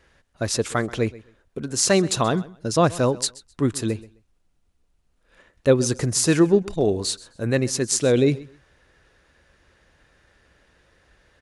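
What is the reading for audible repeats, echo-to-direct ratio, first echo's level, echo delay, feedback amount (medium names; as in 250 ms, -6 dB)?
2, -20.0 dB, -20.0 dB, 130 ms, 20%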